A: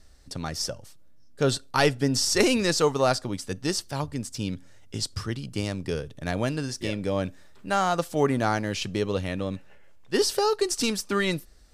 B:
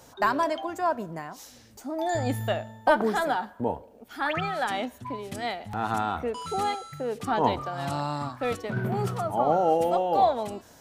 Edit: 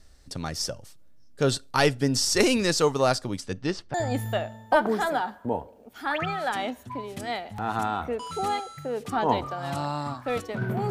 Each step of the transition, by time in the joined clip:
A
3.40–3.94 s: low-pass 8 kHz -> 1.8 kHz
3.94 s: go over to B from 2.09 s

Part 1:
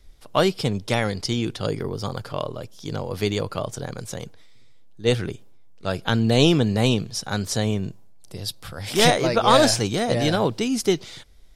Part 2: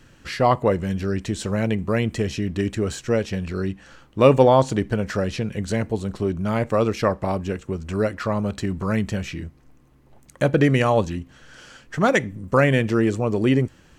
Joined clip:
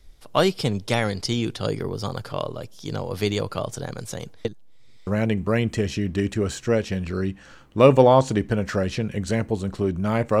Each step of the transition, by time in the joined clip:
part 1
4.45–5.07 s: reverse
5.07 s: go over to part 2 from 1.48 s

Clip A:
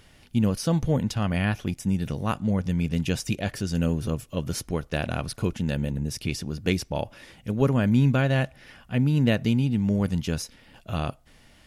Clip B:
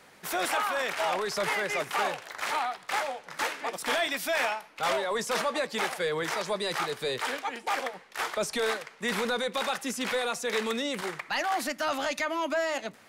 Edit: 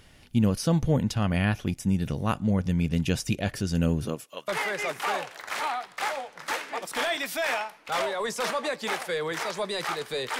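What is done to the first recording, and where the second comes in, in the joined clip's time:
clip A
4.04–4.48 s: high-pass 160 Hz -> 1.3 kHz
4.48 s: go over to clip B from 1.39 s

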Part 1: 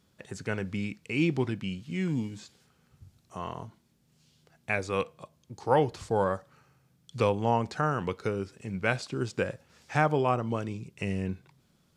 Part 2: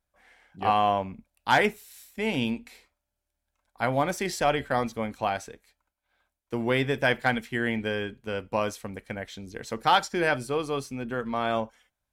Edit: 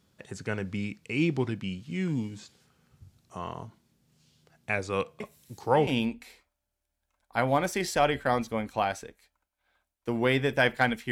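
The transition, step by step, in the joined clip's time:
part 1
5.20 s: add part 2 from 1.65 s 0.67 s -12 dB
5.87 s: go over to part 2 from 2.32 s

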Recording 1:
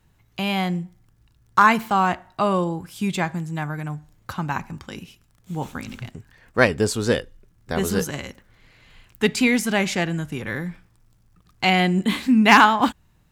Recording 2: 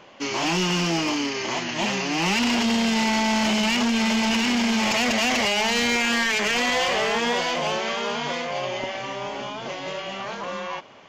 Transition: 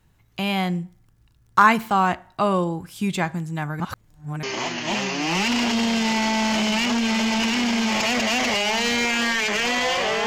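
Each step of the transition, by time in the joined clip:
recording 1
3.80–4.43 s: reverse
4.43 s: go over to recording 2 from 1.34 s

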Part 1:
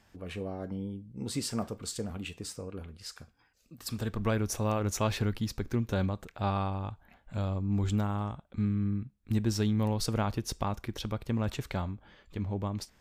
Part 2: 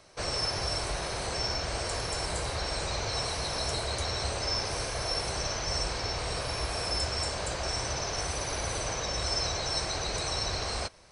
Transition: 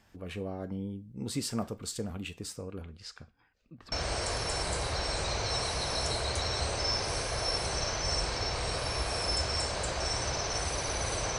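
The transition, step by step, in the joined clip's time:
part 1
2.81–3.92 s: low-pass 8.7 kHz -> 1.8 kHz
3.92 s: go over to part 2 from 1.55 s

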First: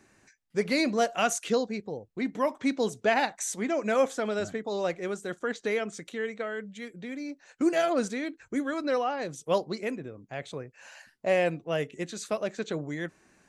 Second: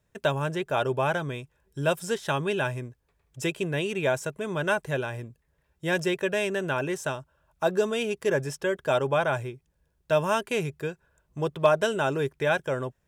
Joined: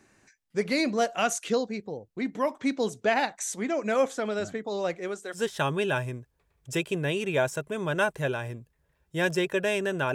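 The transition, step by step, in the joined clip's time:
first
4.97–5.43 s: high-pass 140 Hz -> 700 Hz
5.37 s: go over to second from 2.06 s, crossfade 0.12 s

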